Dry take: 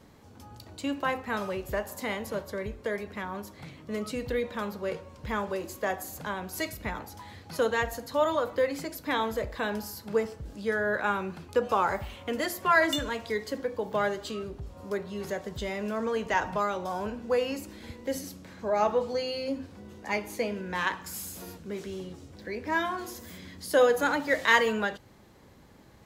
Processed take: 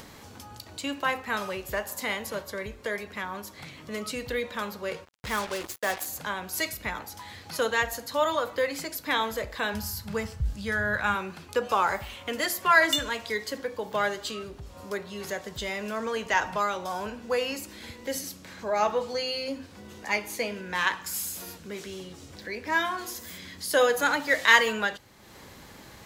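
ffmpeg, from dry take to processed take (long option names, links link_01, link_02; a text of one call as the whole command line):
ffmpeg -i in.wav -filter_complex "[0:a]asplit=3[link_01][link_02][link_03];[link_01]afade=type=out:start_time=5.04:duration=0.02[link_04];[link_02]acrusher=bits=5:mix=0:aa=0.5,afade=type=in:start_time=5.04:duration=0.02,afade=type=out:start_time=6.05:duration=0.02[link_05];[link_03]afade=type=in:start_time=6.05:duration=0.02[link_06];[link_04][link_05][link_06]amix=inputs=3:normalize=0,asplit=3[link_07][link_08][link_09];[link_07]afade=type=out:start_time=9.73:duration=0.02[link_10];[link_08]asubboost=boost=10:cutoff=110,afade=type=in:start_time=9.73:duration=0.02,afade=type=out:start_time=11.14:duration=0.02[link_11];[link_09]afade=type=in:start_time=11.14:duration=0.02[link_12];[link_10][link_11][link_12]amix=inputs=3:normalize=0,tiltshelf=frequency=970:gain=-5,acompressor=mode=upward:threshold=-40dB:ratio=2.5,volume=1.5dB" out.wav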